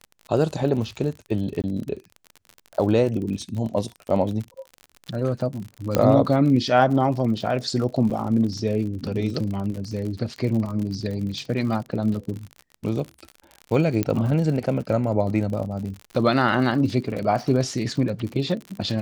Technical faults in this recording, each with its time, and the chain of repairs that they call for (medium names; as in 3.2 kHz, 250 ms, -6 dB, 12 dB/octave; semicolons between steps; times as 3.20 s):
crackle 54 per s -30 dBFS
1.62–1.64 s: dropout 18 ms
5.95 s: pop -6 dBFS
8.10–8.11 s: dropout 6.4 ms
14.03 s: pop -10 dBFS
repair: de-click; interpolate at 1.62 s, 18 ms; interpolate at 8.10 s, 6.4 ms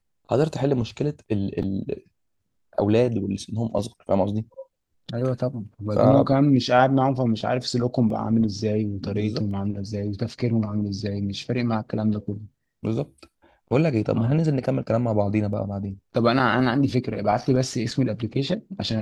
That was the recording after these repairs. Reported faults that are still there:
nothing left